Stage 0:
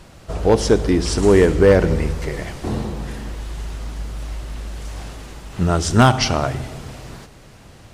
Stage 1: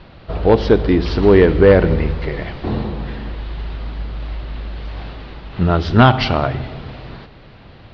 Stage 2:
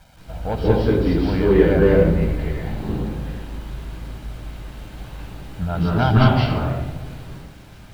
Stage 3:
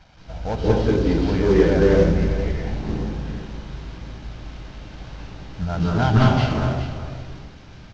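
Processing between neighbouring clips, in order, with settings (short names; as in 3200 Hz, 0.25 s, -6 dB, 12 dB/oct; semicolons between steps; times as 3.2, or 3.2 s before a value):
steep low-pass 4400 Hz 48 dB/oct; gain +2.5 dB
bit-crush 7-bit; reverb RT60 0.80 s, pre-delay 0.158 s, DRR -4 dB; gain -13.5 dB
CVSD 32 kbps; echo 0.409 s -11.5 dB; gain -1 dB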